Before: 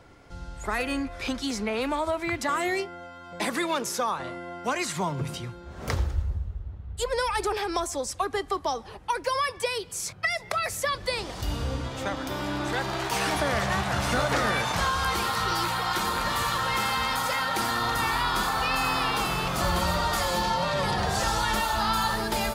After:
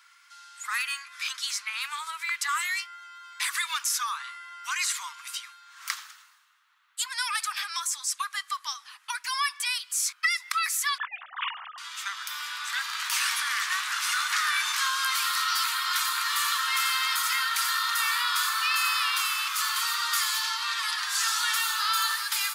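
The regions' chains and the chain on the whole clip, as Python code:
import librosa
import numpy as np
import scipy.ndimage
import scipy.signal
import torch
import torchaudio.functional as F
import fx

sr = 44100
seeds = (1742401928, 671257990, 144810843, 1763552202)

y = fx.chain(x, sr, fx.sine_speech(),
    fx.bandpass_q(hz=700.0, q=5.6),
    fx.env_flatten(amount_pct=100), at=(10.98, 11.78))
y = scipy.signal.sosfilt(scipy.signal.butter(8, 1100.0, 'highpass', fs=sr, output='sos'), y)
y = fx.tilt_eq(y, sr, slope=2.0)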